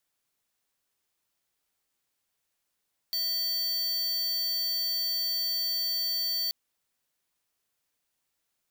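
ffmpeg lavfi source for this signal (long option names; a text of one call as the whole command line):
ffmpeg -f lavfi -i "aevalsrc='0.0335*(2*lt(mod(4540*t,1),0.5)-1)':duration=3.38:sample_rate=44100" out.wav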